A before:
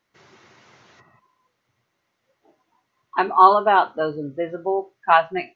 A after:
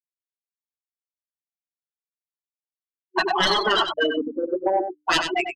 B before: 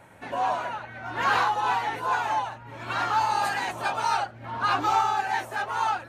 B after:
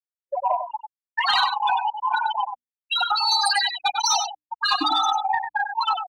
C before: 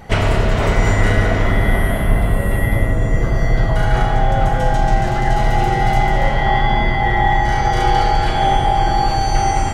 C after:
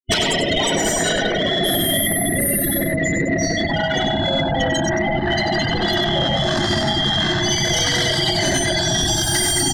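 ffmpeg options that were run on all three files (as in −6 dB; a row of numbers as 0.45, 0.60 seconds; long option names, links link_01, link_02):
-filter_complex "[0:a]aexciter=amount=5.1:drive=6.3:freq=2300,afftfilt=real='re*gte(hypot(re,im),0.282)':imag='im*gte(hypot(re,im),0.282)':win_size=1024:overlap=0.75,aeval=exprs='1.26*sin(PI/2*2*val(0)/1.26)':channel_layout=same,superequalizer=6b=2.82:7b=0.562:11b=2:12b=0.251,afftfilt=real='re*lt(hypot(re,im),1.41)':imag='im*lt(hypot(re,im),1.41)':win_size=1024:overlap=0.75,anlmdn=10,acompressor=threshold=-20dB:ratio=2.5,lowshelf=frequency=190:gain=6,bandreject=frequency=60:width_type=h:width=6,bandreject=frequency=120:width_type=h:width=6,bandreject=frequency=180:width_type=h:width=6,bandreject=frequency=240:width_type=h:width=6,bandreject=frequency=300:width_type=h:width=6,asplit=2[link_01][link_02];[link_02]aecho=0:1:97:0.398[link_03];[link_01][link_03]amix=inputs=2:normalize=0,acontrast=74,volume=-5.5dB"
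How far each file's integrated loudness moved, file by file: −3.5, +4.0, −1.0 LU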